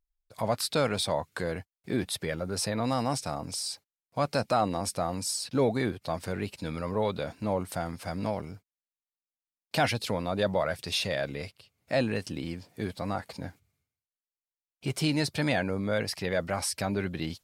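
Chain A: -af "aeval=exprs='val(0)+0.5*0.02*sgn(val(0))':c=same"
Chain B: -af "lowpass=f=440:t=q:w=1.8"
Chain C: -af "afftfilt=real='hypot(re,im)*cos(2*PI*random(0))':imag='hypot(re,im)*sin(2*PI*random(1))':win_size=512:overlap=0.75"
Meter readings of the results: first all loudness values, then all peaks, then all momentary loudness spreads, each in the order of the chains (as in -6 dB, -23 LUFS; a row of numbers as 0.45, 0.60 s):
-29.0, -30.5, -37.0 LUFS; -12.0, -12.0, -18.0 dBFS; 14, 10, 9 LU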